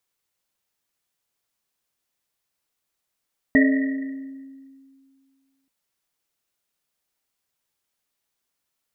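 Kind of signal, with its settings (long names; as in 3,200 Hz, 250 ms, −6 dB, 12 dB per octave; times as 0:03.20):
drum after Risset length 2.13 s, pitch 270 Hz, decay 2.21 s, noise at 1,900 Hz, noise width 140 Hz, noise 25%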